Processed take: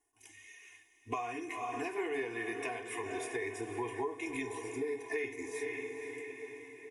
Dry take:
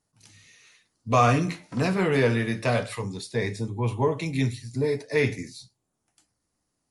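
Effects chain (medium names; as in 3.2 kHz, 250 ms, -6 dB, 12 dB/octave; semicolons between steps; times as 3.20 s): tone controls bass -13 dB, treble 0 dB; echo that smears into a reverb 492 ms, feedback 55%, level -12.5 dB; compression 10:1, threshold -34 dBFS, peak gain reduction 18.5 dB; static phaser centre 880 Hz, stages 8; comb 2.8 ms, depth 83%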